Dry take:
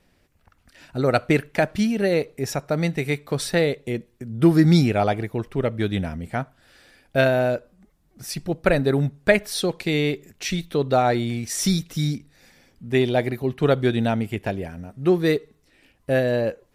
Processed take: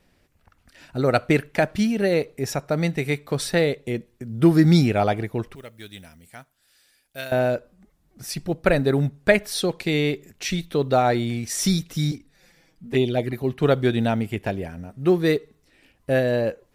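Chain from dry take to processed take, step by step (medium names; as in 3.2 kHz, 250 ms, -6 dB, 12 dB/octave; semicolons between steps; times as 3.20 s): short-mantissa float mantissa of 6-bit; 5.55–7.32 s: pre-emphasis filter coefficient 0.9; 12.11–13.33 s: touch-sensitive flanger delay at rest 6.6 ms, full sweep at -15 dBFS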